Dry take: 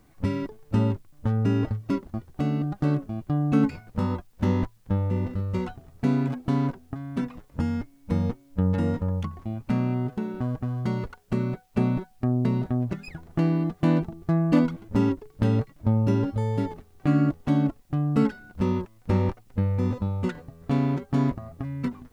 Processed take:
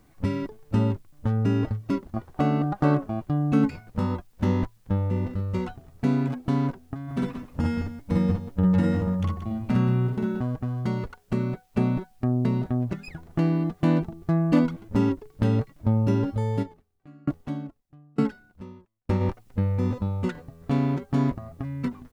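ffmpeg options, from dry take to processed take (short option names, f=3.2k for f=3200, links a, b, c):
-filter_complex "[0:a]asettb=1/sr,asplit=3[a][b][c];[a]atrim=end=2.164[d];[b]atrim=start=2.16:end=3.26,asetpts=PTS-STARTPTS,afade=t=in:d=0.004:c=qsin,afade=t=out:st=1.096:d=0.004:c=qsin,equalizer=f=920:t=o:w=2.3:g=10.5[e];[c]atrim=start=3.256[f];[d][e]acrossfade=d=0.004:c1=hsin:c2=qsin[g];[g][f]acrossfade=d=0.004:c1=qsin:c2=hsin,asplit=3[h][i][j];[h]afade=t=out:st=7.07:d=0.02[k];[i]aecho=1:1:49|59|179:0.631|0.596|0.316,afade=t=in:st=7.07:d=0.02,afade=t=out:st=10.39:d=0.02[l];[j]afade=t=in:st=10.39:d=0.02[m];[k][l][m]amix=inputs=3:normalize=0,asplit=3[n][o][p];[n]afade=t=out:st=16.62:d=0.02[q];[o]aeval=exprs='val(0)*pow(10,-33*if(lt(mod(1.1*n/s,1),2*abs(1.1)/1000),1-mod(1.1*n/s,1)/(2*abs(1.1)/1000),(mod(1.1*n/s,1)-2*abs(1.1)/1000)/(1-2*abs(1.1)/1000))/20)':c=same,afade=t=in:st=16.62:d=0.02,afade=t=out:st=19.2:d=0.02[r];[p]afade=t=in:st=19.2:d=0.02[s];[q][r][s]amix=inputs=3:normalize=0"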